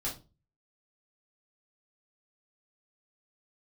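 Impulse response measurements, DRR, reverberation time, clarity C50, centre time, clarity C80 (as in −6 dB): −6.5 dB, 0.30 s, 9.5 dB, 23 ms, 17.5 dB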